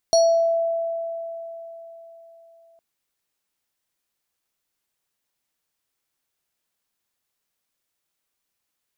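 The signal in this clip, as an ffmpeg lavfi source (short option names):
-f lavfi -i "aevalsrc='0.251*pow(10,-3*t/3.92)*sin(2*PI*666*t+0.73*pow(10,-3*t/0.55)*sin(2*PI*7.56*666*t))':d=2.66:s=44100"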